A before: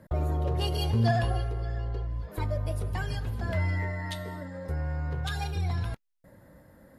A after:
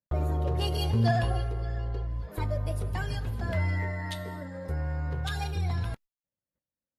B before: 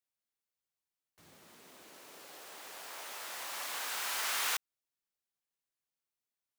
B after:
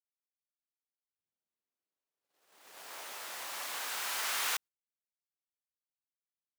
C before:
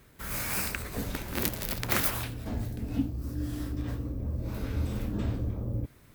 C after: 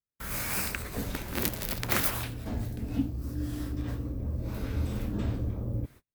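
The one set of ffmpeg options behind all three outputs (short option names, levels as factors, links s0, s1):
-af "agate=range=0.00631:threshold=0.00447:ratio=16:detection=peak"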